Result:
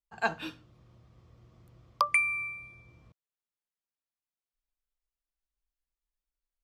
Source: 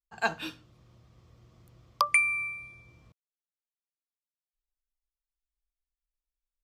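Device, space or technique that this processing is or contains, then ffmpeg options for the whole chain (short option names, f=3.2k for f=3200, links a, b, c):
behind a face mask: -af "highshelf=f=3.4k:g=-7"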